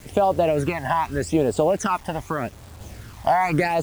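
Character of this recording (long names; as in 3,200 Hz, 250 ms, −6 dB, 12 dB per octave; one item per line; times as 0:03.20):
phaser sweep stages 12, 0.83 Hz, lowest notch 410–2,100 Hz
a quantiser's noise floor 8 bits, dither none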